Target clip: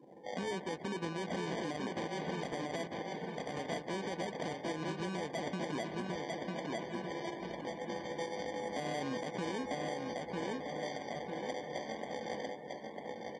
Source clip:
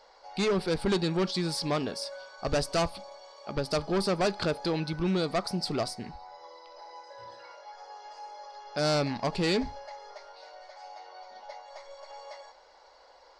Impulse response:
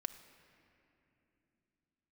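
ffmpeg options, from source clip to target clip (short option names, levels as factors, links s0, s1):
-filter_complex "[0:a]acrossover=split=1100[s0][s1];[s0]aeval=exprs='sgn(val(0))*max(abs(val(0))-0.00376,0)':c=same[s2];[s2][s1]amix=inputs=2:normalize=0,acrusher=samples=33:mix=1:aa=0.000001,acompressor=threshold=0.00794:ratio=10,highpass=170,lowpass=8000,aecho=1:1:948|1896|2844|3792|4740|5688:0.596|0.292|0.143|0.0701|0.0343|0.0168,asplit=2[s3][s4];[1:a]atrim=start_sample=2205[s5];[s4][s5]afir=irnorm=-1:irlink=0,volume=1.12[s6];[s3][s6]amix=inputs=2:normalize=0,afftdn=nr=19:nf=-57,alimiter=level_in=2.51:limit=0.0631:level=0:latency=1:release=126,volume=0.398,volume=1.78"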